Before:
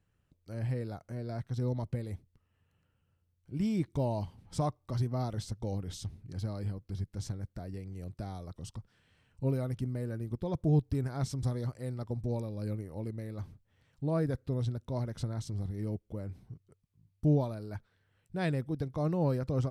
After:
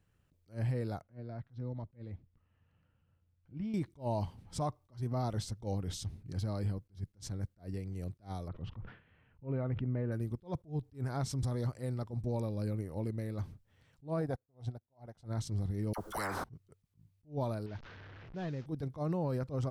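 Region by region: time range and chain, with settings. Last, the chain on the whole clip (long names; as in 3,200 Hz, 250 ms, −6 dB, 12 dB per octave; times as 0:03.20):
0:01.01–0:03.74: notch filter 400 Hz, Q 5.8 + downward compressor 1.5 to 1, threshold −53 dBFS + high-frequency loss of the air 240 metres
0:08.48–0:10.12: low-pass filter 2,600 Hz 24 dB per octave + level that may fall only so fast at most 130 dB per second
0:14.21–0:15.25: parametric band 740 Hz +14 dB 0.54 octaves + expander for the loud parts 2.5 to 1, over −42 dBFS
0:15.93–0:16.44: high shelf with overshoot 1,800 Hz −9 dB, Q 3 + all-pass dispersion lows, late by 51 ms, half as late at 1,100 Hz + every bin compressed towards the loudest bin 10 to 1
0:17.66–0:18.66: linear delta modulator 32 kbit/s, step −46.5 dBFS + low-pass that shuts in the quiet parts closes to 1,800 Hz, open at −29.5 dBFS + downward compressor 2 to 1, threshold −44 dBFS
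whole clip: dynamic equaliser 930 Hz, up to +3 dB, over −46 dBFS, Q 1.2; brickwall limiter −28 dBFS; level that may rise only so fast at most 260 dB per second; level +2 dB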